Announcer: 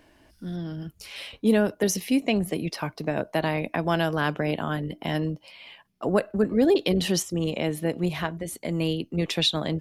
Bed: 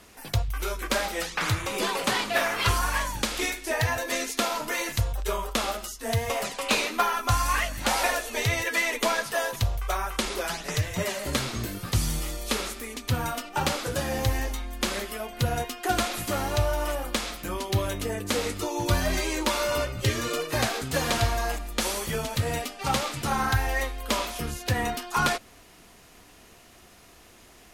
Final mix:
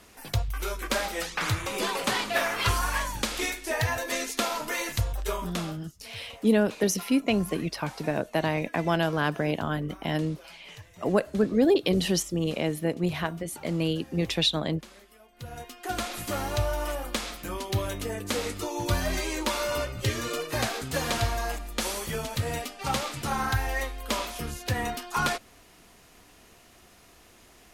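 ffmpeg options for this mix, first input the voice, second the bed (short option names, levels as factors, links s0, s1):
-filter_complex "[0:a]adelay=5000,volume=0.891[s0];[1:a]volume=7.08,afade=t=out:st=5.29:d=0.51:silence=0.105925,afade=t=in:st=15.32:d=1.03:silence=0.11885[s1];[s0][s1]amix=inputs=2:normalize=0"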